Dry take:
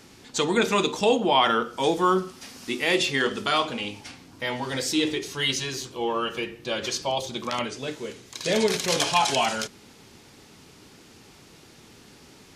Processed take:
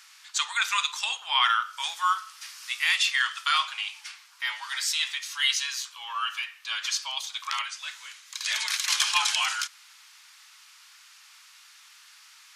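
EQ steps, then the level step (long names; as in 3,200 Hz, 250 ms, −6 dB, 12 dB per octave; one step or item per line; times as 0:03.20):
Butterworth high-pass 1,100 Hz 36 dB per octave
+1.5 dB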